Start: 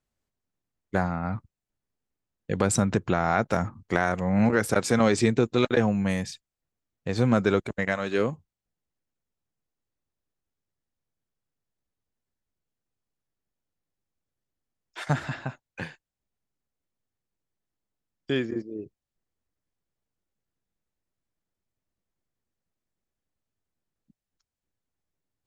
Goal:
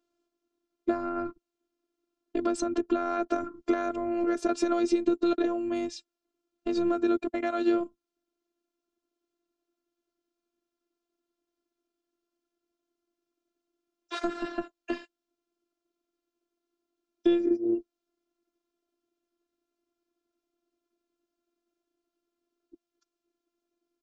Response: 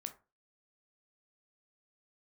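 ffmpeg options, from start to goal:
-filter_complex "[0:a]equalizer=frequency=240:width=0.6:gain=6.5,asplit=2[link_01][link_02];[link_02]alimiter=limit=-11.5dB:level=0:latency=1:release=102,volume=0dB[link_03];[link_01][link_03]amix=inputs=2:normalize=0,acompressor=threshold=-25dB:ratio=2.5,highpass=170,equalizer=frequency=190:width_type=q:width=4:gain=4,equalizer=frequency=290:width_type=q:width=4:gain=7,equalizer=frequency=540:width_type=q:width=4:gain=6,equalizer=frequency=820:width_type=q:width=4:gain=-9,equalizer=frequency=1200:width_type=q:width=4:gain=8,equalizer=frequency=1800:width_type=q:width=4:gain=-10,lowpass=frequency=6400:width=0.5412,lowpass=frequency=6400:width=1.3066,asetrate=46746,aresample=44100,afftfilt=real='hypot(re,im)*cos(PI*b)':imag='0':win_size=512:overlap=0.75"

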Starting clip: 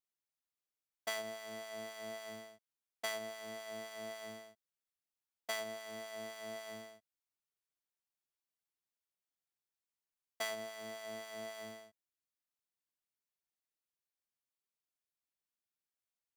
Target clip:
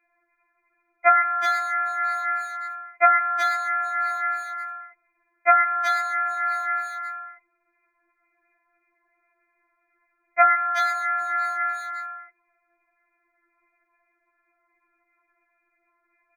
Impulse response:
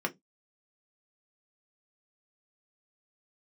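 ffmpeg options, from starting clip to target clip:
-filter_complex "[0:a]apsyclip=29.5dB,lowpass=frequency=2300:width_type=q:width=0.5098,lowpass=frequency=2300:width_type=q:width=0.6013,lowpass=frequency=2300:width_type=q:width=0.9,lowpass=frequency=2300:width_type=q:width=2.563,afreqshift=-2700,asplit=2[link_01][link_02];[link_02]acompressor=threshold=-23dB:ratio=12,volume=-2dB[link_03];[link_01][link_03]amix=inputs=2:normalize=0,asplit=2[link_04][link_05];[link_05]adelay=370,highpass=300,lowpass=3400,asoftclip=type=hard:threshold=-9dB,volume=-7dB[link_06];[link_04][link_06]amix=inputs=2:normalize=0,afftfilt=real='re*4*eq(mod(b,16),0)':imag='im*4*eq(mod(b,16),0)':win_size=2048:overlap=0.75"

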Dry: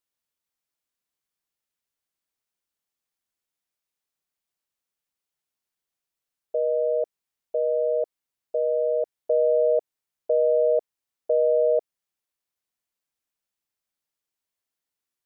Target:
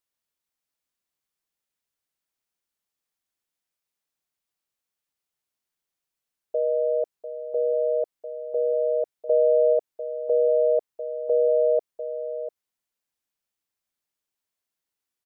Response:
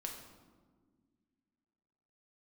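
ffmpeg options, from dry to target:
-af "aecho=1:1:696:0.282"

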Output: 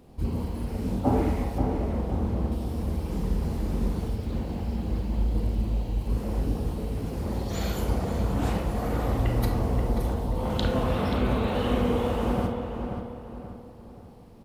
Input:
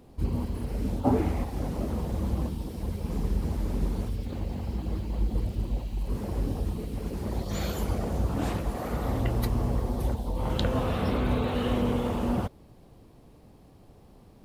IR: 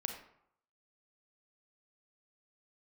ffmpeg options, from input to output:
-filter_complex "[0:a]asettb=1/sr,asplit=3[link_01][link_02][link_03];[link_01]atrim=end=1.584[link_04];[link_02]atrim=start=1.58:end=2.52,asetpts=PTS-STARTPTS,afade=type=in:duration=0.004:curve=qsin,afade=type=out:start_time=0.936:duration=0.004:curve=qsin,highshelf=frequency=3500:gain=-10[link_05];[link_03]atrim=start=2.516[link_06];[link_04][link_05]acrossfade=duration=0.004:curve1=hsin:curve2=qsin[link_07];[link_07][link_06]acrossfade=duration=0.004:curve1=qsin:curve2=hsin,asplit=2[link_08][link_09];[link_09]adelay=532,lowpass=frequency=2400:poles=1,volume=-6dB,asplit=2[link_10][link_11];[link_11]adelay=532,lowpass=frequency=2400:poles=1,volume=0.42,asplit=2[link_12][link_13];[link_13]adelay=532,lowpass=frequency=2400:poles=1,volume=0.42,asplit=2[link_14][link_15];[link_15]adelay=532,lowpass=frequency=2400:poles=1,volume=0.42,asplit=2[link_16][link_17];[link_17]adelay=532,lowpass=frequency=2400:poles=1,volume=0.42[link_18];[link_08][link_10][link_12][link_14][link_16][link_18]amix=inputs=6:normalize=0[link_19];[1:a]atrim=start_sample=2205[link_20];[link_19][link_20]afir=irnorm=-1:irlink=0,volume=1dB"

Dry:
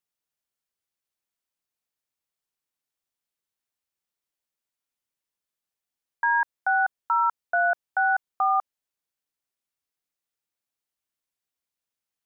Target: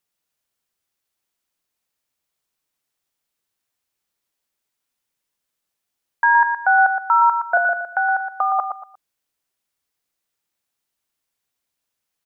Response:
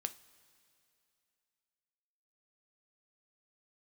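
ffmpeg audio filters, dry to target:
-filter_complex "[0:a]asettb=1/sr,asplit=3[link_01][link_02][link_03];[link_01]atrim=end=7.574[link_04];[link_02]atrim=start=7.57:end=8.59,asetpts=PTS-STARTPTS,afade=type=in:duration=0.004:curve=qsin,afade=type=out:start_time=1.016:duration=0.004:curve=qsin,acrossover=split=790|1700[link_05][link_06][link_07];[link_05]acompressor=threshold=-34dB:ratio=4[link_08];[link_06]acompressor=threshold=-31dB:ratio=4[link_09];[link_07]acompressor=threshold=-38dB:ratio=4[link_10];[link_08][link_09][link_10]amix=inputs=3:normalize=0[link_11];[link_03]atrim=start=8.586[link_12];[link_04][link_11]acrossfade=duration=0.004:curve1=hsin:curve2=qsin[link_13];[link_13][link_12]acrossfade=duration=0.004:curve1=qsin:curve2=hsin,asplit=2[link_14][link_15];[link_15]aecho=0:1:118|236|354:0.422|0.118|0.0331[link_16];[link_14][link_16]amix=inputs=2:normalize=0,volume=7.5dB"

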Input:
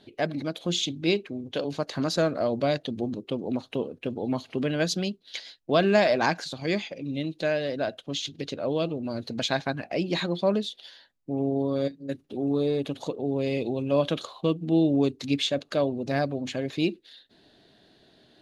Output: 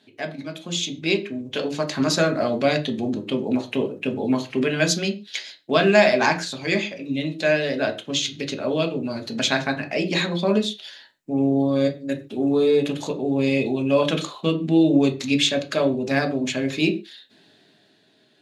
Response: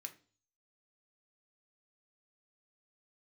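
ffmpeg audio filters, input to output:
-filter_complex "[0:a]dynaudnorm=framelen=130:gausssize=17:maxgain=9dB[link_01];[1:a]atrim=start_sample=2205,afade=type=out:start_time=0.2:duration=0.01,atrim=end_sample=9261[link_02];[link_01][link_02]afir=irnorm=-1:irlink=0,volume=5dB"

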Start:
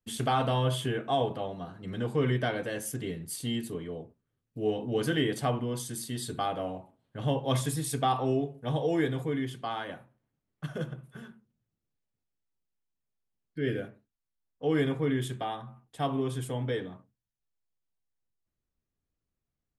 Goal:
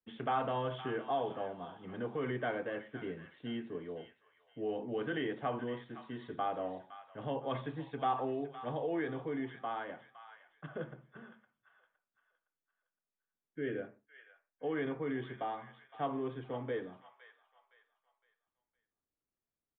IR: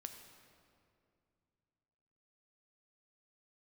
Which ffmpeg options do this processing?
-filter_complex "[0:a]acrossover=split=220 2400:gain=0.251 1 0.126[link_01][link_02][link_03];[link_01][link_02][link_03]amix=inputs=3:normalize=0,acrossover=split=840[link_04][link_05];[link_04]alimiter=level_in=2dB:limit=-24dB:level=0:latency=1,volume=-2dB[link_06];[link_05]aecho=1:1:513|1026|1539|2052:0.299|0.102|0.0345|0.0117[link_07];[link_06][link_07]amix=inputs=2:normalize=0,aresample=8000,aresample=44100,volume=-3.5dB"

